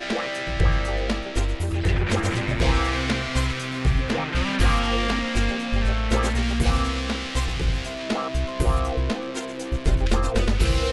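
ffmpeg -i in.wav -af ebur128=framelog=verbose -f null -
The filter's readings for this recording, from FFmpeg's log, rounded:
Integrated loudness:
  I:         -24.2 LUFS
  Threshold: -34.2 LUFS
Loudness range:
  LRA:         2.3 LU
  Threshold: -44.2 LUFS
  LRA low:   -25.6 LUFS
  LRA high:  -23.3 LUFS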